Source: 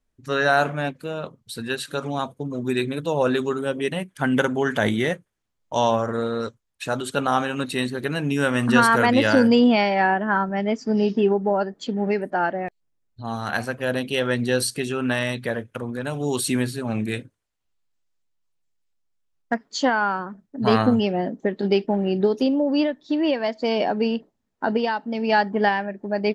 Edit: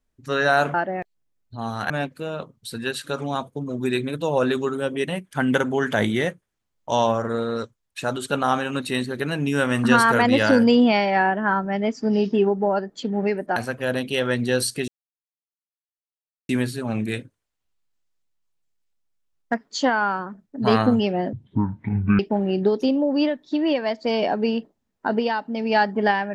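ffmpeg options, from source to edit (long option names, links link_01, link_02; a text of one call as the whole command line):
ffmpeg -i in.wav -filter_complex "[0:a]asplit=8[link_01][link_02][link_03][link_04][link_05][link_06][link_07][link_08];[link_01]atrim=end=0.742[link_09];[link_02]atrim=start=12.398:end=13.562[link_10];[link_03]atrim=start=0.738:end=12.402[link_11];[link_04]atrim=start=13.558:end=14.88,asetpts=PTS-STARTPTS,afade=type=out:start_time=1.318:duration=0.004:curve=hsin[link_12];[link_05]atrim=start=14.88:end=16.49,asetpts=PTS-STARTPTS,volume=0[link_13];[link_06]atrim=start=16.49:end=21.334,asetpts=PTS-STARTPTS,afade=type=in:duration=0.004:curve=hsin[link_14];[link_07]atrim=start=21.33:end=21.77,asetpts=PTS-STARTPTS,asetrate=22491,aresample=44100,atrim=end_sample=38047,asetpts=PTS-STARTPTS[link_15];[link_08]atrim=start=21.766[link_16];[link_09][link_10]acrossfade=duration=0.004:curve1=hsin:curve2=hsin[link_17];[link_17][link_11]acrossfade=duration=0.004:curve1=hsin:curve2=hsin[link_18];[link_12][link_13][link_14]concat=n=3:v=0:a=1[link_19];[link_18][link_19]acrossfade=duration=0.004:curve1=hsin:curve2=hsin[link_20];[link_20][link_15]acrossfade=duration=0.004:curve1=hsin:curve2=hsin[link_21];[link_21][link_16]acrossfade=duration=0.004:curve1=hsin:curve2=hsin" out.wav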